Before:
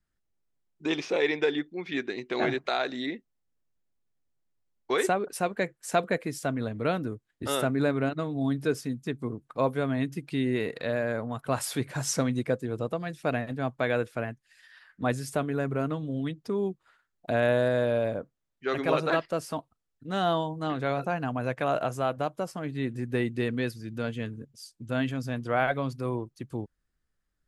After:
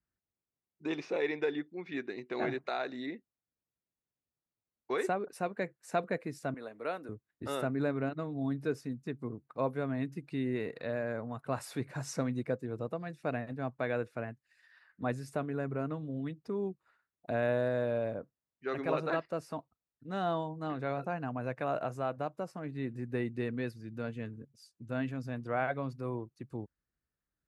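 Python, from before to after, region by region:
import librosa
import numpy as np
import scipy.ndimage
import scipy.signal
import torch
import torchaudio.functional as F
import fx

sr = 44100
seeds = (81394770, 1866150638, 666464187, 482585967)

y = fx.chain(x, sr, fx.highpass(hz=450.0, slope=12),
    fx.peak_eq(hz=10000.0, db=8.0, octaves=0.62), at=(6.54, 7.09))
y = scipy.signal.sosfilt(scipy.signal.butter(2, 57.0, 'highpass', fs=sr, output='sos'), y)
y = fx.high_shelf(y, sr, hz=3800.0, db=-9.5)
y = fx.notch(y, sr, hz=3200.0, q=7.4)
y = y * 10.0 ** (-6.0 / 20.0)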